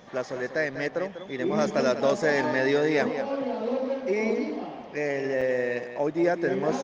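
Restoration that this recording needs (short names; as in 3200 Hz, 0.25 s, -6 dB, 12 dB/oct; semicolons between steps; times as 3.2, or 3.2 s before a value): interpolate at 5.41, 5.4 ms; inverse comb 0.196 s -10.5 dB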